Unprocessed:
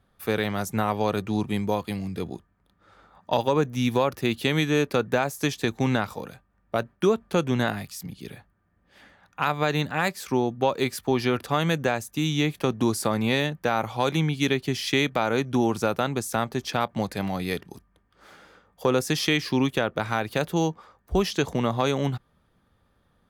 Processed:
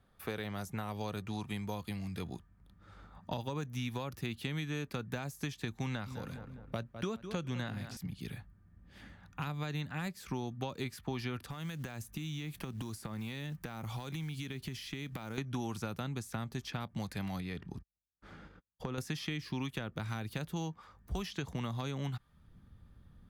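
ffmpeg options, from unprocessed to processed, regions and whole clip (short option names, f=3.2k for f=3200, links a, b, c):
-filter_complex "[0:a]asettb=1/sr,asplit=3[a][b][c];[a]atrim=end=5.864[d];[b]atrim=start=5.86:end=7.97,asetpts=PTS-STARTPTS,afade=t=in:d=0.004:c=qsin,afade=t=out:st=2.106:d=0.004:c=qsin,equalizer=f=540:t=o:w=0.26:g=5.5,asplit=2[e][f];[f]adelay=204,lowpass=f=3.3k:p=1,volume=-15dB,asplit=2[g][h];[h]adelay=204,lowpass=f=3.3k:p=1,volume=0.4,asplit=2[i][j];[j]adelay=204,lowpass=f=3.3k:p=1,volume=0.4,asplit=2[k][l];[l]adelay=204,lowpass=f=3.3k:p=1,volume=0.4[m];[e][g][i][k][m]amix=inputs=5:normalize=0,atrim=end_sample=93051,acrossover=split=7500[n][o];[o]acompressor=threshold=-59dB:ratio=4:attack=1:release=60[p];[n][p]amix=inputs=2:normalize=0[q];[c]atrim=start=7.966[r];[d][q]acrossfade=d=0.004:c1=hsin:c2=qsin[s];[s][r]acrossfade=d=0.004:c1=qsin:c2=hsin,asettb=1/sr,asplit=3[t][u][v];[t]atrim=end=11.504[w];[u]atrim=start=11.5:end=15.38,asetpts=PTS-STARTPTS,afade=t=in:d=0.004:c=qsin,afade=t=out:st=3.876:d=0.004:c=qsin,highshelf=f=6.5k:g=8.5,acompressor=threshold=-34dB:ratio=5:attack=3.2:release=140:knee=1:detection=peak,acrusher=bits=6:mode=log:mix=0:aa=0.000001[x];[v]atrim=start=15.376[y];[w][x]acrossfade=d=0.004:c1=hsin:c2=qsin[z];[z][y]acrossfade=d=0.004:c1=qsin:c2=hsin,asettb=1/sr,asplit=3[aa][ab][ac];[aa]atrim=end=17.404[ad];[ab]atrim=start=17.4:end=18.98,asetpts=PTS-STARTPTS,afade=t=in:d=0.004:c=qsin,afade=t=out:st=1.576:d=0.004:c=qsin,agate=range=-44dB:threshold=-54dB:ratio=16:release=100:detection=peak,aemphasis=mode=reproduction:type=75fm,acompressor=threshold=-31dB:ratio=2:attack=3.2:release=140:knee=1:detection=peak[ae];[ac]atrim=start=18.976[af];[ad][ae]acrossfade=d=0.004:c1=hsin:c2=qsin[ag];[ag][af]acrossfade=d=0.004:c1=qsin:c2=hsin,asubboost=boost=5:cutoff=230,acrossover=split=640|3300[ah][ai][aj];[ah]acompressor=threshold=-37dB:ratio=4[ak];[ai]acompressor=threshold=-41dB:ratio=4[al];[aj]acompressor=threshold=-49dB:ratio=4[am];[ak][al][am]amix=inputs=3:normalize=0,volume=-3dB"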